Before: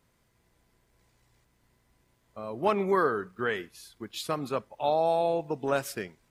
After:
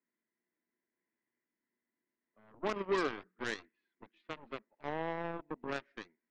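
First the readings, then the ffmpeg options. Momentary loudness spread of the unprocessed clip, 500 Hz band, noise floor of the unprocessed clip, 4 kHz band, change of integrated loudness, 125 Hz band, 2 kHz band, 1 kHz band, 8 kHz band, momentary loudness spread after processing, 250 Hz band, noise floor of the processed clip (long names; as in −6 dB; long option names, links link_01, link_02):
15 LU, −11.5 dB, −70 dBFS, −7.5 dB, −10.0 dB, −10.5 dB, −6.0 dB, −12.0 dB, −13.0 dB, 15 LU, −8.0 dB, below −85 dBFS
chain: -af "highpass=frequency=220:width=0.5412,highpass=frequency=220:width=1.3066,equalizer=frequency=230:width_type=q:width=4:gain=5,equalizer=frequency=330:width_type=q:width=4:gain=5,equalizer=frequency=520:width_type=q:width=4:gain=-6,equalizer=frequency=770:width_type=q:width=4:gain=-8,equalizer=frequency=1200:width_type=q:width=4:gain=-6,equalizer=frequency=1900:width_type=q:width=4:gain=7,lowpass=frequency=2200:width=0.5412,lowpass=frequency=2200:width=1.3066,aeval=exprs='0.168*(cos(1*acos(clip(val(0)/0.168,-1,1)))-cos(1*PI/2))+0.0299*(cos(7*acos(clip(val(0)/0.168,-1,1)))-cos(7*PI/2))+0.00422*(cos(8*acos(clip(val(0)/0.168,-1,1)))-cos(8*PI/2))':channel_layout=same,volume=-7dB"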